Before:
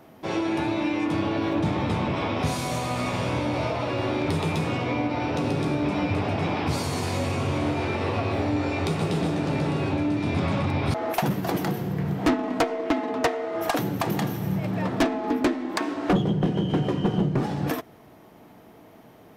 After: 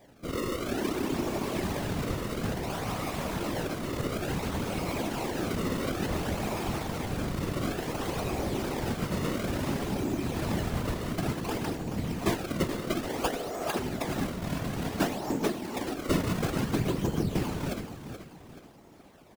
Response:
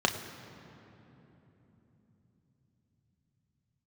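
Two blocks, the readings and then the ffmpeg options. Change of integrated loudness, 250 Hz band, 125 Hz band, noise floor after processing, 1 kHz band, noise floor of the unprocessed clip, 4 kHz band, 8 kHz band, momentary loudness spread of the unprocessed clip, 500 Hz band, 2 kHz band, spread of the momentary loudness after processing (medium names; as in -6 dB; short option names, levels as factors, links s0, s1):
-5.5 dB, -6.0 dB, -6.5 dB, -51 dBFS, -7.0 dB, -50 dBFS, -3.5 dB, +0.5 dB, 3 LU, -5.5 dB, -5.5 dB, 4 LU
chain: -af "acrusher=samples=31:mix=1:aa=0.000001:lfo=1:lforange=49.6:lforate=0.57,aecho=1:1:429|858|1287|1716:0.316|0.12|0.0457|0.0174,afftfilt=real='hypot(re,im)*cos(2*PI*random(0))':imag='hypot(re,im)*sin(2*PI*random(1))':win_size=512:overlap=0.75"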